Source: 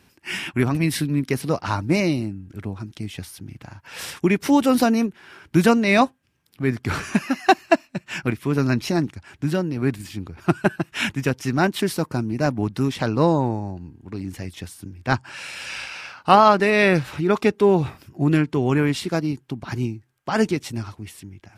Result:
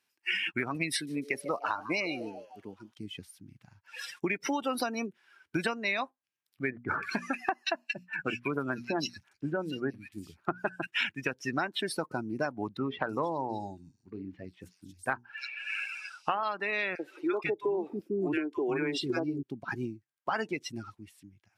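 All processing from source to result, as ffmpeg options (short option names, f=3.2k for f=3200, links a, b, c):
-filter_complex "[0:a]asettb=1/sr,asplit=3[a][b][c];[a]atrim=end=0.924[d];[b]atrim=start=0.92:end=2.94,asetpts=PTS-STARTPTS,afade=t=in:d=0.004:c=qsin,afade=t=out:st=2.016:d=0.004:c=qsin,highpass=f=290:p=1,asplit=7[e][f][g][h][i][j][k];[f]adelay=148,afreqshift=140,volume=-14dB[l];[g]adelay=296,afreqshift=280,volume=-19.2dB[m];[h]adelay=444,afreqshift=420,volume=-24.4dB[n];[i]adelay=592,afreqshift=560,volume=-29.6dB[o];[j]adelay=740,afreqshift=700,volume=-34.8dB[p];[k]adelay=888,afreqshift=840,volume=-40dB[q];[e][l][m][n][o][p][q]amix=inputs=7:normalize=0,atrim=end_sample=89082[r];[c]atrim=start=2.936[s];[d][r]acrossfade=d=0.004:c1=hsin:c2=qsin[t];[t][s]acrossfade=d=0.004:c1=qsin:c2=hsin,asettb=1/sr,asplit=3[u][v][w];[u]atrim=end=6.704[x];[v]atrim=start=6.7:end=10.87,asetpts=PTS-STARTPTS,afade=t=in:d=0.004:c=qsin,afade=t=out:st=4.166:d=0.004:c=qsin,bandreject=f=60:t=h:w=6,bandreject=f=120:t=h:w=6,bandreject=f=180:t=h:w=6,bandreject=f=240:t=h:w=6,acrossover=split=2100[y][z];[z]adelay=180[aa];[y][aa]amix=inputs=2:normalize=0,atrim=end_sample=183897[ab];[w]atrim=start=10.866[ac];[x][ab]acrossfade=d=0.004:c1=hsin:c2=qsin[ad];[ad][ac]acrossfade=d=0.004:c1=qsin:c2=hsin,asettb=1/sr,asplit=3[ae][af][ag];[ae]atrim=end=12.774[ah];[af]atrim=start=12.77:end=16.43,asetpts=PTS-STARTPTS,afade=t=in:d=0.004:c=qsin,afade=t=out:st=3.656:d=0.004:c=qsin,bandreject=f=60:t=h:w=6,bandreject=f=120:t=h:w=6,bandreject=f=180:t=h:w=6,bandreject=f=240:t=h:w=6,bandreject=f=300:t=h:w=6,bandreject=f=360:t=h:w=6,bandreject=f=420:t=h:w=6,acrossover=split=3600[ai][aj];[aj]adelay=320[ak];[ai][ak]amix=inputs=2:normalize=0,atrim=end_sample=161406[al];[ag]atrim=start=16.426[am];[ah][al]acrossfade=d=0.004:c1=hsin:c2=qsin[an];[an][am]acrossfade=d=0.004:c1=qsin:c2=hsin,asettb=1/sr,asplit=3[ao][ap][aq];[ao]atrim=end=16.954[ar];[ap]atrim=start=16.95:end=19.43,asetpts=PTS-STARTPTS,afade=t=in:d=0.004:c=qsin,afade=t=out:st=2.476:d=0.004:c=qsin,equalizer=f=350:t=o:w=0.61:g=11.5,acrossover=split=260|1100[as][at][au];[at]adelay=40[av];[as]adelay=490[aw];[aw][av][au]amix=inputs=3:normalize=0,atrim=end_sample=109368[ax];[aq]atrim=start=19.426[ay];[ar][ax]acrossfade=d=0.004:c1=hsin:c2=qsin[az];[az][ay]acrossfade=d=0.004:c1=qsin:c2=hsin,afftdn=nr=23:nf=-29,highpass=f=1.4k:p=1,acompressor=threshold=-33dB:ratio=16,volume=6dB"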